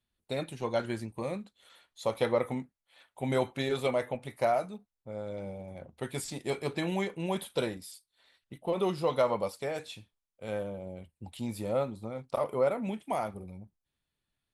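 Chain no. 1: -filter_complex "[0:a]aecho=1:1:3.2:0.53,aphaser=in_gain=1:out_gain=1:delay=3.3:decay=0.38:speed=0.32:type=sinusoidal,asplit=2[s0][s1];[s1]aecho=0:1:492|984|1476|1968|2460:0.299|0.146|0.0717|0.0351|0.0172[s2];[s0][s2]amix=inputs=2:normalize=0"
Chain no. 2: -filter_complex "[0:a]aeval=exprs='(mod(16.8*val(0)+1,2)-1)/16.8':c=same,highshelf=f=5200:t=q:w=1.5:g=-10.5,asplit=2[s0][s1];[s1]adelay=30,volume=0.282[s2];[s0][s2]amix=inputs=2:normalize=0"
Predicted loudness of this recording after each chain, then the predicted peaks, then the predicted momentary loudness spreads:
-30.5 LUFS, -33.5 LUFS; -10.5 dBFS, -19.5 dBFS; 16 LU, 15 LU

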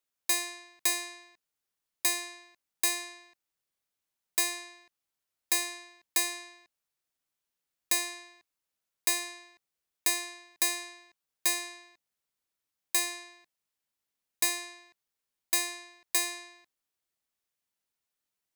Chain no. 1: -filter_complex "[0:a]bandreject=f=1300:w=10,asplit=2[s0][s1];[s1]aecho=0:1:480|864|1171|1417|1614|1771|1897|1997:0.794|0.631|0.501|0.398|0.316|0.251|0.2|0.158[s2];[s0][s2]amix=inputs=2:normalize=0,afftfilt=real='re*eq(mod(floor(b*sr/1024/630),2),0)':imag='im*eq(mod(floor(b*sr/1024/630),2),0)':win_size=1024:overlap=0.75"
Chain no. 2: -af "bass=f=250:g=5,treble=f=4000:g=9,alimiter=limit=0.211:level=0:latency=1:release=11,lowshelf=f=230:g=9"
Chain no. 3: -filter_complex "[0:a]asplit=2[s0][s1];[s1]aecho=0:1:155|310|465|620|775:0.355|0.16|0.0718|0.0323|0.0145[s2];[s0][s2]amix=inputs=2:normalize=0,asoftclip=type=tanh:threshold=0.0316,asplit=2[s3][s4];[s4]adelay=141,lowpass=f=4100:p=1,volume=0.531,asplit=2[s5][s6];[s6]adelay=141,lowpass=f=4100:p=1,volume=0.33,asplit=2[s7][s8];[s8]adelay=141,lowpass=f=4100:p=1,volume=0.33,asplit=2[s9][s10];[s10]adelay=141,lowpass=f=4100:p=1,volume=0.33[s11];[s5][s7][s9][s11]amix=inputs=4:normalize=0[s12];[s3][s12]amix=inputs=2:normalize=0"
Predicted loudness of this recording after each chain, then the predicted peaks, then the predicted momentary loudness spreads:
-31.5 LUFS, -26.5 LUFS, -36.0 LUFS; -13.0 dBFS, -13.5 dBFS, -27.5 dBFS; 7 LU, 14 LU, 15 LU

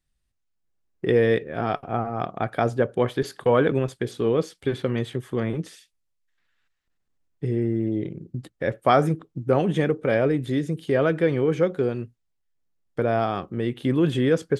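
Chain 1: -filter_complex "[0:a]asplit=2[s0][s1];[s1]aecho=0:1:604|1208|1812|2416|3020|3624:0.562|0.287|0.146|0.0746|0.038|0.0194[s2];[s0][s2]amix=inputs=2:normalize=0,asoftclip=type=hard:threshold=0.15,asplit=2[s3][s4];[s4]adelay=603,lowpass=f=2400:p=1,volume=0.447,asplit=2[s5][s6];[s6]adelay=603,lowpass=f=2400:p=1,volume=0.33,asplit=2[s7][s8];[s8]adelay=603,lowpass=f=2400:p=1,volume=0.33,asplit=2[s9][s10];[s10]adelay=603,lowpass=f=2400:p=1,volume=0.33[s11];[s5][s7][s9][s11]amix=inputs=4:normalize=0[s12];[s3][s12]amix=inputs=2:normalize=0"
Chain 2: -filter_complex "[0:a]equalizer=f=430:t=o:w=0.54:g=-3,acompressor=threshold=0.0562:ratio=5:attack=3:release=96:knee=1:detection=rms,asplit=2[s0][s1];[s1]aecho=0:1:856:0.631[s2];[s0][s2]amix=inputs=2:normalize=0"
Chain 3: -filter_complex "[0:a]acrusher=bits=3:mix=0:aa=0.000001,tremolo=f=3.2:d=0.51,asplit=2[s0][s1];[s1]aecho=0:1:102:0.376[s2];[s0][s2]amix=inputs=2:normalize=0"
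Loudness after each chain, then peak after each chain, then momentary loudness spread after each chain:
-24.5 LUFS, -31.5 LUFS, -25.0 LUFS; -12.5 dBFS, -15.0 dBFS, -7.5 dBFS; 9 LU, 7 LU, 9 LU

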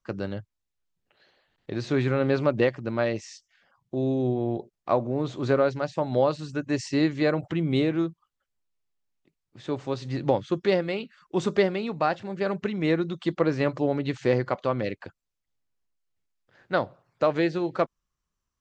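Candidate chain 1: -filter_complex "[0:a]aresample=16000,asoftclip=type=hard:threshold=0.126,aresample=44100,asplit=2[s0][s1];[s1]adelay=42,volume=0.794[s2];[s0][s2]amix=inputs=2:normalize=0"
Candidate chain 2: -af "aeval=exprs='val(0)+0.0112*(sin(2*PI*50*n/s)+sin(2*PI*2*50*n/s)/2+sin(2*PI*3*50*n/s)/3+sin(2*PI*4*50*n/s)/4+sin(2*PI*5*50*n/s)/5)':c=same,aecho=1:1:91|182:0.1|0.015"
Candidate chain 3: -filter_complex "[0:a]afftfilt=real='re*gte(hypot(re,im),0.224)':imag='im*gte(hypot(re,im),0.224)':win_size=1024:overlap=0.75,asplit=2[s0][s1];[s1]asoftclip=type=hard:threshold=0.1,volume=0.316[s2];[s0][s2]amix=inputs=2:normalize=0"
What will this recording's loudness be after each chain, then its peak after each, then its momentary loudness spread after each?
-25.5 LUFS, -27.0 LUFS, -26.0 LUFS; -12.5 dBFS, -8.5 dBFS, -9.0 dBFS; 9 LU, 20 LU, 11 LU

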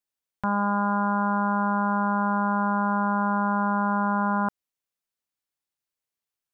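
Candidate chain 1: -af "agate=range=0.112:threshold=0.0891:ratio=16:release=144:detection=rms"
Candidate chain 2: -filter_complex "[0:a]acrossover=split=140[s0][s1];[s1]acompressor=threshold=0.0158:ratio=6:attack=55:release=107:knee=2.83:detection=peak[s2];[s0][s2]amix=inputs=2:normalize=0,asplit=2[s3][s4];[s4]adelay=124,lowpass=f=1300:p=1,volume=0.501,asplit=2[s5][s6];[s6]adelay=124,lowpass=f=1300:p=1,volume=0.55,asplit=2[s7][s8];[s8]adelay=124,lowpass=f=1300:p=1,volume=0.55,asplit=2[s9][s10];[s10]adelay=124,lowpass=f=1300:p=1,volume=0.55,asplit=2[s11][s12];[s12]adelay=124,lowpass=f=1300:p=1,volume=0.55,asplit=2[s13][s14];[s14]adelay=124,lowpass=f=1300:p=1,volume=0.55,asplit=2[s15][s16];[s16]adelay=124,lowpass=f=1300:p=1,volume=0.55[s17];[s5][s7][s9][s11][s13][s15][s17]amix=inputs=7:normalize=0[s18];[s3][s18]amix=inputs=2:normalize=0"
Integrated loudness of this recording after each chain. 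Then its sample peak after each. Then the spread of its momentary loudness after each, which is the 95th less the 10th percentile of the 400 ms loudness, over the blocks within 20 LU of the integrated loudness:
-28.5 LUFS, -31.0 LUFS; -19.5 dBFS, -14.0 dBFS; 2 LU, 4 LU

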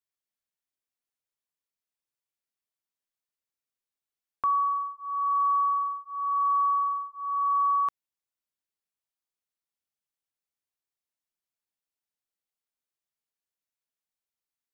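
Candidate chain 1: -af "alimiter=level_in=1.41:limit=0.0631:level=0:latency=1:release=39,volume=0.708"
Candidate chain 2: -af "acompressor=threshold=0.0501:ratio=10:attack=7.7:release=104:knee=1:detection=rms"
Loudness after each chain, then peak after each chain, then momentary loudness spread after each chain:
-31.0 LUFS, -29.5 LUFS; -27.0 dBFS, -20.5 dBFS; 3 LU, 5 LU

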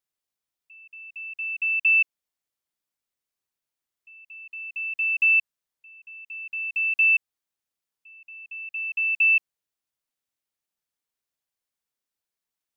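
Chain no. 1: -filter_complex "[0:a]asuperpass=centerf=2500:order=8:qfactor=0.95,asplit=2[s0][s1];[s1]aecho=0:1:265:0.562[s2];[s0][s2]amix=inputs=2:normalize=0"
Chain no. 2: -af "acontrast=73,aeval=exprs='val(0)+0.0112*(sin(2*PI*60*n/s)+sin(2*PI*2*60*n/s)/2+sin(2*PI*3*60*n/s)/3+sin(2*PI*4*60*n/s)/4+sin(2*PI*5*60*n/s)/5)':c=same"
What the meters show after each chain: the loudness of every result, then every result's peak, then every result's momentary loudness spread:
-21.0 LUFS, -15.5 LUFS; -14.0 dBFS, -8.5 dBFS; 18 LU, 22 LU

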